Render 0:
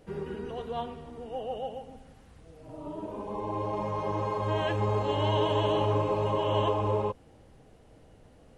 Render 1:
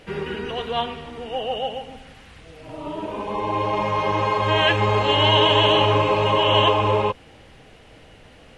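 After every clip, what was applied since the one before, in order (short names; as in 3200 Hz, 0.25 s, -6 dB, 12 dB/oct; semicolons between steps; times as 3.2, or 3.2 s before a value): bell 2600 Hz +14 dB 2.1 oct; gain +6 dB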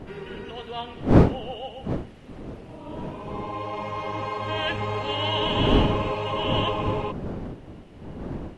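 wind noise 320 Hz -19 dBFS; gain -9 dB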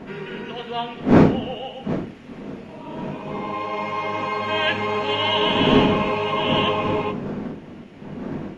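reverb RT60 0.50 s, pre-delay 3 ms, DRR 6.5 dB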